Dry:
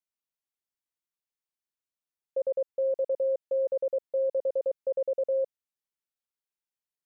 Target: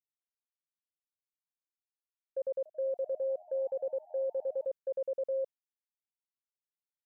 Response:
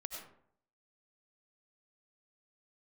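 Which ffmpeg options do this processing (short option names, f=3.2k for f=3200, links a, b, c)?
-filter_complex "[0:a]alimiter=level_in=4.5dB:limit=-24dB:level=0:latency=1:release=71,volume=-4.5dB,agate=range=-33dB:threshold=-36dB:ratio=3:detection=peak,asettb=1/sr,asplit=3[a][b][c];[a]atrim=end=2.384[d];[b]atrim=start=2.38:end=4.65,asetpts=PTS-STARTPTS,afade=t=in:d=0.004:c=qsin,afade=t=out:st=2.266:d=0.004:c=qsin,asplit=5[e][f][g][h][i];[f]adelay=275,afreqshift=88,volume=-22.5dB[j];[g]adelay=550,afreqshift=176,volume=-27.5dB[k];[h]adelay=825,afreqshift=264,volume=-32.6dB[l];[i]adelay=1100,afreqshift=352,volume=-37.6dB[m];[e][j][k][l][m]amix=inputs=5:normalize=0,atrim=end_sample=100107[n];[c]atrim=start=4.646[o];[d][n]acrossfade=d=0.004:c1=hsin:c2=qsin[p];[p][o]acrossfade=d=0.004:c1=qsin:c2=hsin"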